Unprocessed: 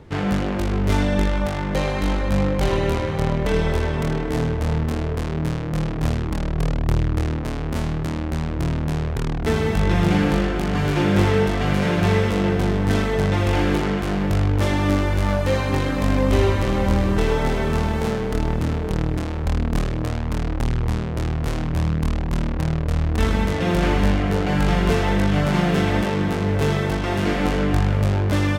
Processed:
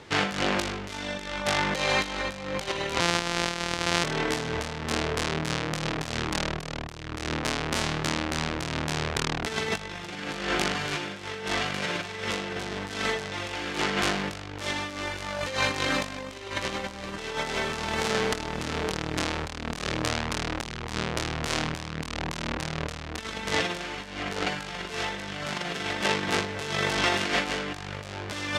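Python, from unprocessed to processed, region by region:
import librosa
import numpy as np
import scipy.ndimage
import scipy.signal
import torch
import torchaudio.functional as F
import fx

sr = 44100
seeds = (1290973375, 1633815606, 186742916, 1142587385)

y = fx.chain(x, sr, fx.sample_sort(block=256),
    fx.air_absorb(metres=53.0), at=(3.0, 4.04))
y = fx.over_compress(y, sr, threshold_db=-23.0, ratio=-0.5)
y = scipy.signal.sosfilt(scipy.signal.butter(2, 6200.0, 'lowpass', fs=sr, output='sos'), y)
y = fx.tilt_eq(y, sr, slope=4.0)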